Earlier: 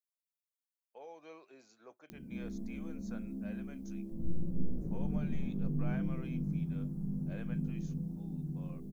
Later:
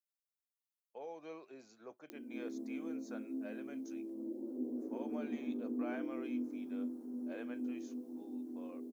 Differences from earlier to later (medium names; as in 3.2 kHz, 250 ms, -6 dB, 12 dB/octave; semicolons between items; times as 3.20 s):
background: add Chebyshev high-pass 230 Hz, order 10; master: add peaking EQ 280 Hz +5 dB 2.7 oct